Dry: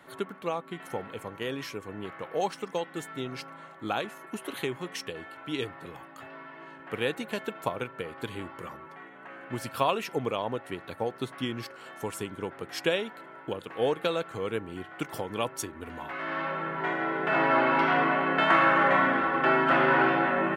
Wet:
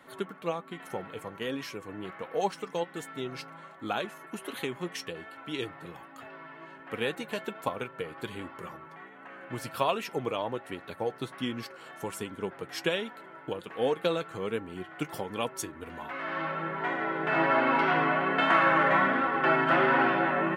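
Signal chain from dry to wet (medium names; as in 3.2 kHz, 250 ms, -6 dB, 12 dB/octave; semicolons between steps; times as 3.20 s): flange 1.3 Hz, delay 3.6 ms, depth 3.4 ms, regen +55%; trim +3 dB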